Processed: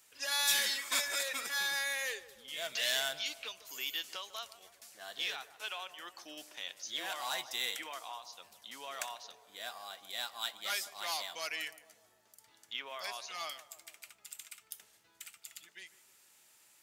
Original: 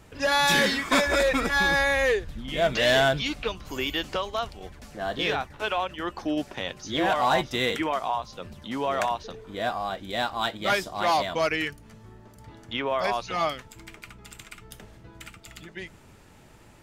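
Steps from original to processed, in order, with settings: differentiator; band-passed feedback delay 148 ms, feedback 61%, band-pass 580 Hz, level -13 dB

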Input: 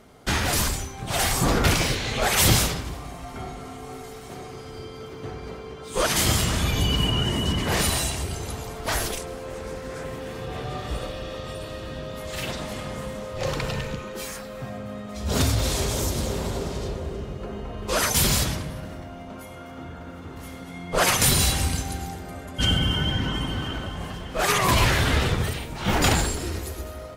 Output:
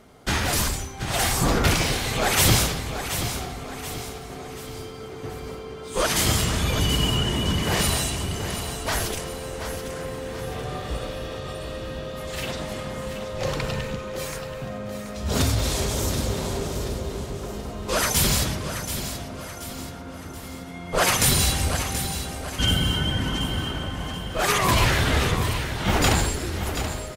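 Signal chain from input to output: feedback delay 730 ms, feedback 45%, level -9.5 dB

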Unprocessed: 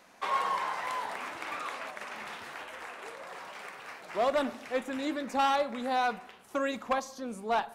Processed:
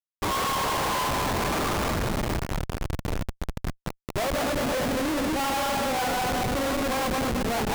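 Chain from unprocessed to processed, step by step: backward echo that repeats 111 ms, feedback 71%, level -1 dB; Chebyshev shaper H 6 -24 dB, 7 -34 dB, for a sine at -14 dBFS; Schmitt trigger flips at -33.5 dBFS; trim +4 dB

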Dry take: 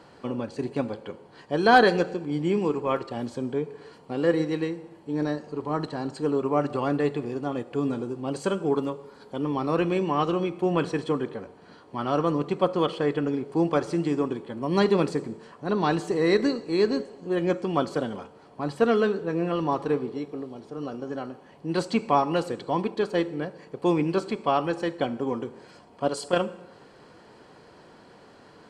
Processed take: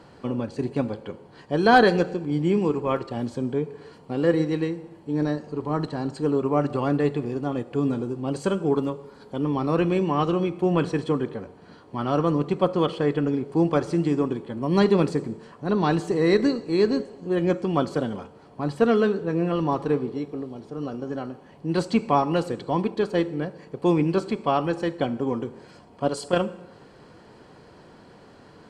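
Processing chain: bass shelf 220 Hz +7.5 dB

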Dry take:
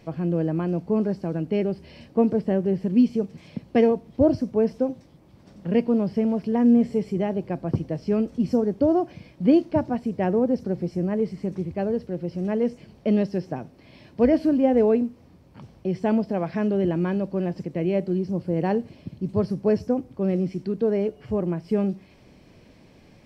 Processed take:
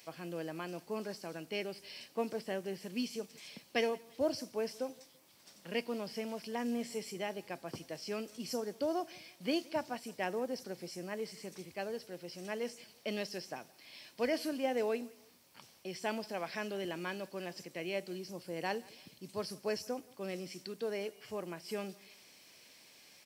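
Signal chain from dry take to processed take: differentiator; on a send: feedback delay 169 ms, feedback 37%, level -24 dB; on the sum: trim +9.5 dB

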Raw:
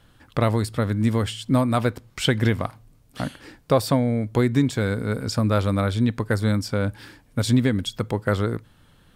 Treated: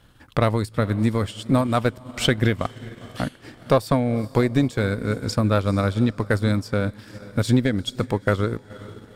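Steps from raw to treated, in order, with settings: single-diode clipper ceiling -16 dBFS; echo that smears into a reverb 454 ms, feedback 45%, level -16 dB; transient shaper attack +2 dB, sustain -8 dB; trim +1.5 dB

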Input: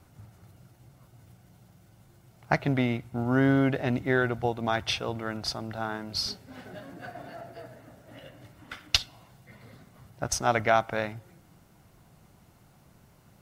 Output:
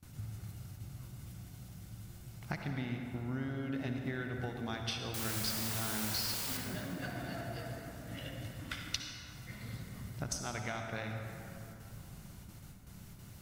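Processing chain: gate with hold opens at -48 dBFS; peaking EQ 690 Hz -12 dB 2.7 oct; compression 8:1, threshold -45 dBFS, peak gain reduction 25 dB; 5.14–6.57 s: word length cut 8-bit, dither triangular; reverberation RT60 3.0 s, pre-delay 52 ms, DRR 2.5 dB; trim +8 dB

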